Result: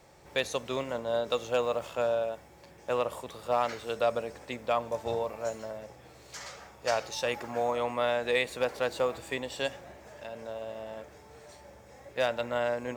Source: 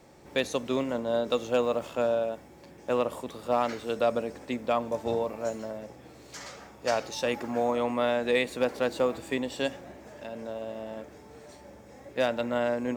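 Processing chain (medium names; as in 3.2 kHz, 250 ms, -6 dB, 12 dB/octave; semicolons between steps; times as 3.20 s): peaking EQ 260 Hz -10 dB 1.1 oct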